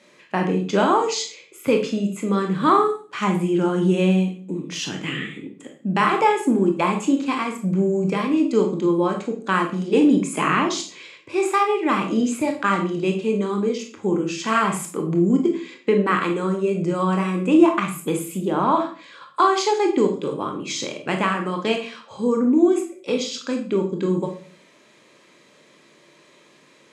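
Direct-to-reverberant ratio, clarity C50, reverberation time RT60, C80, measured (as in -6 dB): 3.0 dB, 8.0 dB, 0.45 s, 13.0 dB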